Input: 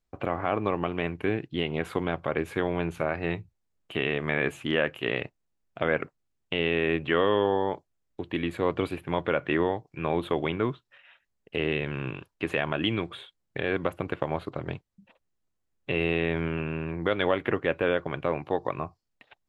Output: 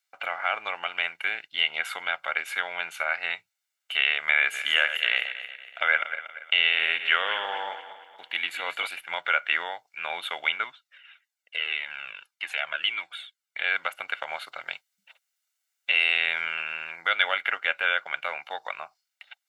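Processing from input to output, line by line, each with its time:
0:04.39–0:08.87: feedback delay that plays each chunk backwards 118 ms, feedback 62%, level −10 dB
0:10.64–0:13.60: flanger whose copies keep moving one way falling 1.7 Hz
0:14.28–0:17.02: high-shelf EQ 4,200 Hz +5 dB
whole clip: Chebyshev high-pass filter 1,800 Hz, order 2; comb filter 1.4 ms, depth 57%; level +8.5 dB

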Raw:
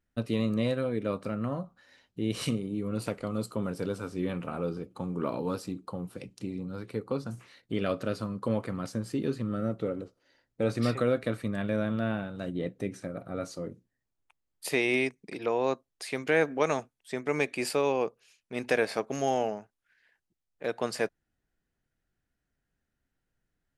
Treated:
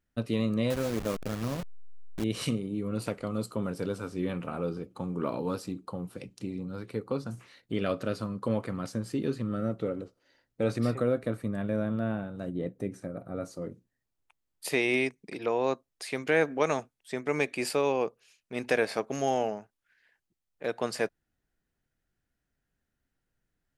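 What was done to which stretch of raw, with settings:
0:00.70–0:02.24: hold until the input has moved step −31.5 dBFS
0:10.78–0:13.62: parametric band 3,300 Hz −8.5 dB 2.3 octaves

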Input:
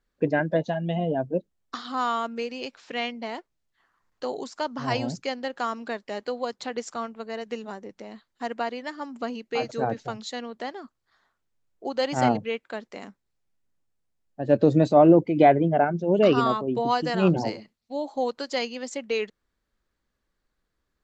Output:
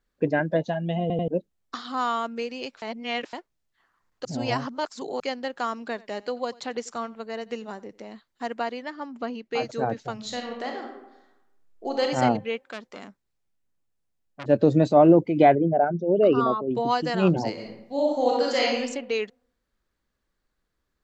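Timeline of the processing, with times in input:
0:01.01: stutter in place 0.09 s, 3 plays
0:02.82–0:03.33: reverse
0:04.25–0:05.20: reverse
0:05.80–0:08.04: single-tap delay 89 ms −22 dB
0:08.84–0:09.52: high-frequency loss of the air 110 metres
0:10.14–0:12.03: thrown reverb, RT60 0.93 s, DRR 1 dB
0:12.67–0:14.46: saturating transformer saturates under 2,100 Hz
0:15.55–0:16.71: spectral envelope exaggerated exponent 1.5
0:17.53–0:18.78: thrown reverb, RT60 0.82 s, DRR −5 dB

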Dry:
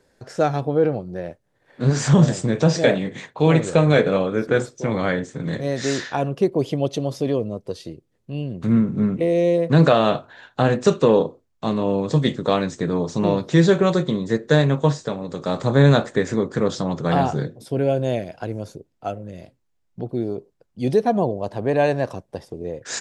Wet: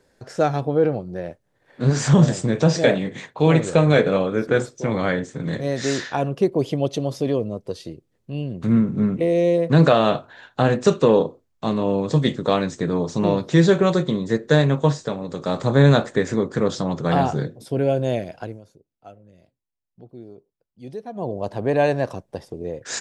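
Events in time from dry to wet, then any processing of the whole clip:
0:18.37–0:21.39: duck −15.5 dB, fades 0.24 s

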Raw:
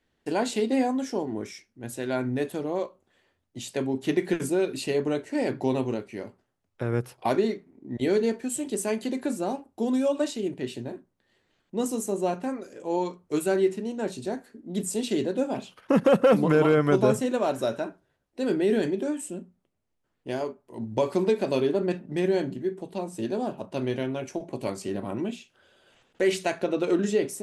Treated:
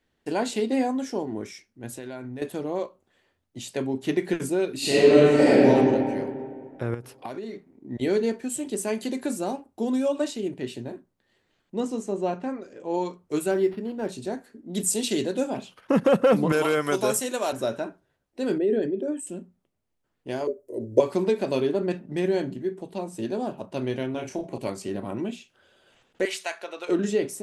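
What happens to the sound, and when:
0:01.87–0:02.42: downward compressor 5 to 1, threshold −33 dBFS
0:04.77–0:05.68: thrown reverb, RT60 2.1 s, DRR −11 dB
0:06.94–0:07.54: downward compressor 8 to 1, threshold −31 dBFS
0:08.95–0:09.51: high-shelf EQ 4,200 Hz +6 dB
0:11.80–0:12.94: high-frequency loss of the air 94 metres
0:13.51–0:14.09: linearly interpolated sample-rate reduction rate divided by 6×
0:14.73–0:15.50: high-shelf EQ 2,800 Hz +9 dB
0:16.52–0:17.53: RIAA equalisation recording
0:18.58–0:19.27: spectral envelope exaggerated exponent 1.5
0:20.47–0:21.00: drawn EQ curve 110 Hz 0 dB, 170 Hz −14 dB, 270 Hz +3 dB, 390 Hz +12 dB, 580 Hz +12 dB, 820 Hz −14 dB, 2,100 Hz −7 dB, 3,100 Hz −14 dB, 5,700 Hz +1 dB, 13,000 Hz +7 dB
0:24.11–0:24.58: double-tracking delay 33 ms −4 dB
0:26.25–0:26.89: high-pass filter 880 Hz

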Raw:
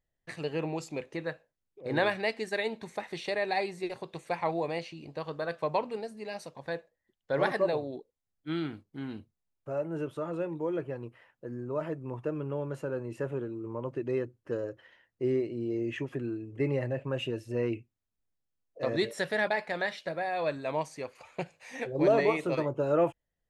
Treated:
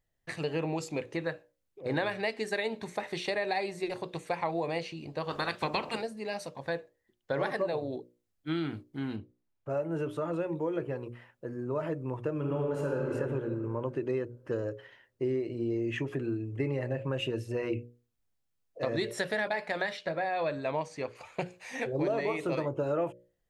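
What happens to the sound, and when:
0:05.29–0:06.01: ceiling on every frequency bin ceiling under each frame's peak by 21 dB
0:09.16–0:09.70: low-pass filter 2,600 Hz 6 dB per octave
0:12.34–0:13.13: thrown reverb, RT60 2.2 s, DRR −1.5 dB
0:19.97–0:21.17: high-frequency loss of the air 59 metres
whole clip: parametric band 110 Hz +5.5 dB 0.23 octaves; mains-hum notches 60/120/180/240/300/360/420/480/540/600 Hz; downward compressor 5 to 1, threshold −31 dBFS; level +3.5 dB

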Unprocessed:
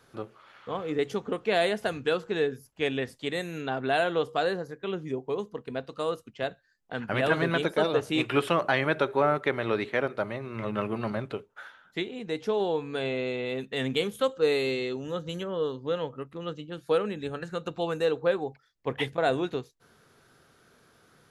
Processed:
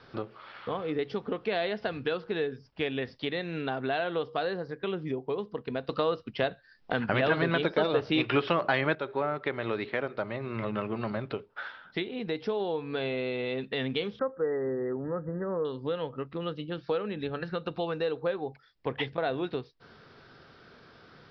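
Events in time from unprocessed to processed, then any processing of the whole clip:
0:05.89–0:08.95: clip gain +10.5 dB
0:14.19–0:15.65: linear-phase brick-wall band-stop 2,000–9,300 Hz
whole clip: Butterworth low-pass 5,400 Hz 96 dB per octave; downward compressor 2.5 to 1, threshold −39 dBFS; level +6.5 dB

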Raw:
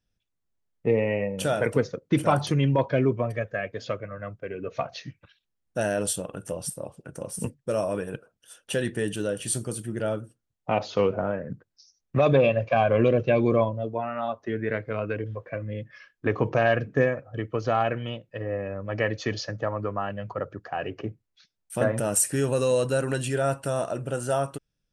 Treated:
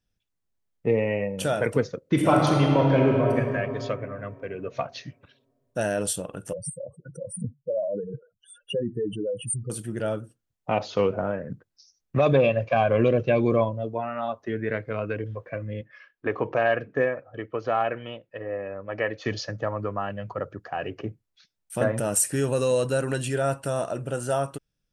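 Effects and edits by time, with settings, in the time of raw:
0:02.00–0:03.38: thrown reverb, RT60 2.7 s, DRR −0.5 dB
0:06.53–0:09.70: expanding power law on the bin magnitudes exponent 3.3
0:15.81–0:19.25: bass and treble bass −10 dB, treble −12 dB

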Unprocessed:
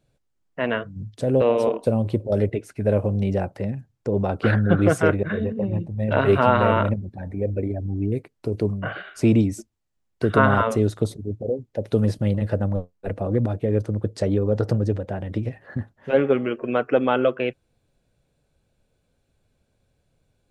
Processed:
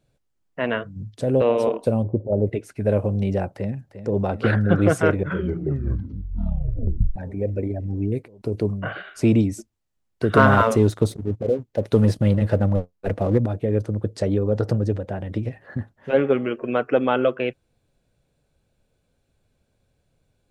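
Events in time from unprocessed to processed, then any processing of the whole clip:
0:02.03–0:02.47: Butterworth low-pass 970 Hz
0:03.52–0:04.21: delay throw 350 ms, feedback 85%, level −11.5 dB
0:05.13: tape stop 2.03 s
0:10.32–0:13.38: leveller curve on the samples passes 1

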